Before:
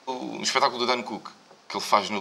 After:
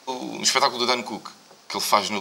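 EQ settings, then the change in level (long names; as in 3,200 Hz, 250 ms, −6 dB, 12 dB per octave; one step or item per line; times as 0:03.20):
low-shelf EQ 66 Hz +6.5 dB
high-shelf EQ 4,800 Hz +7.5 dB
high-shelf EQ 12,000 Hz +12 dB
+1.0 dB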